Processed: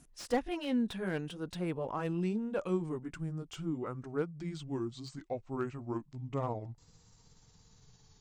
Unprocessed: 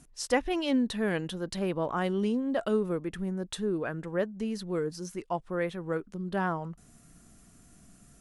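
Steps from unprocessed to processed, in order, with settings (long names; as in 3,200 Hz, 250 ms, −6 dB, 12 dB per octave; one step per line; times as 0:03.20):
pitch glide at a constant tempo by −8 semitones starting unshifted
slew-rate limiting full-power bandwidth 59 Hz
level −4 dB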